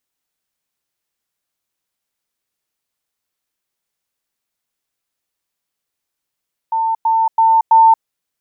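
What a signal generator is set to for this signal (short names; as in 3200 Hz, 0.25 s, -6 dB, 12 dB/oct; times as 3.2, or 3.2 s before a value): level ladder 898 Hz -14 dBFS, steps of 3 dB, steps 4, 0.23 s 0.10 s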